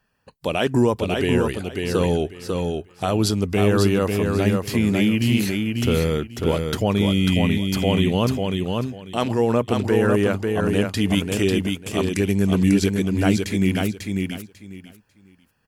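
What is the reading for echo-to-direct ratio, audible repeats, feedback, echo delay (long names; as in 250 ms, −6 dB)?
−4.0 dB, 3, 20%, 545 ms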